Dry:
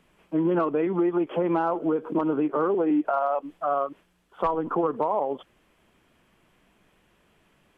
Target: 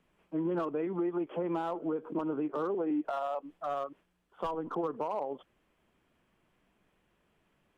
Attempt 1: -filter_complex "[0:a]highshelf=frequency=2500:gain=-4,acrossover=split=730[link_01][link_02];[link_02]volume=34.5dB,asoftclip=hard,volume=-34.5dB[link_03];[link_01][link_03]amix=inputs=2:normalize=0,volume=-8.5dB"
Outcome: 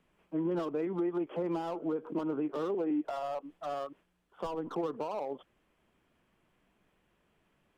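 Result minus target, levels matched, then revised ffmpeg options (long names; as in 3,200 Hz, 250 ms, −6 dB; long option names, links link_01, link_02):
gain into a clipping stage and back: distortion +10 dB
-filter_complex "[0:a]highshelf=frequency=2500:gain=-4,acrossover=split=730[link_01][link_02];[link_02]volume=25.5dB,asoftclip=hard,volume=-25.5dB[link_03];[link_01][link_03]amix=inputs=2:normalize=0,volume=-8.5dB"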